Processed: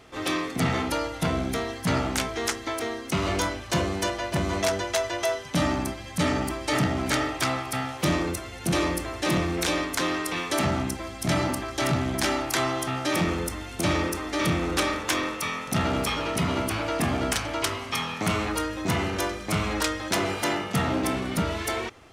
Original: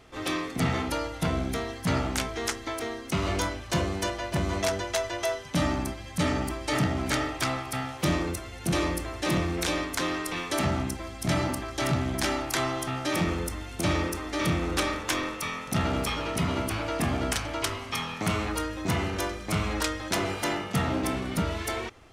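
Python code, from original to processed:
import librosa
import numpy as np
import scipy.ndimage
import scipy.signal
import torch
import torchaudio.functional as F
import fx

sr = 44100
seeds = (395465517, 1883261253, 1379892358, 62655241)

p1 = fx.low_shelf(x, sr, hz=60.0, db=-9.5)
p2 = 10.0 ** (-23.5 / 20.0) * np.tanh(p1 / 10.0 ** (-23.5 / 20.0))
y = p1 + F.gain(torch.from_numpy(p2), -6.5).numpy()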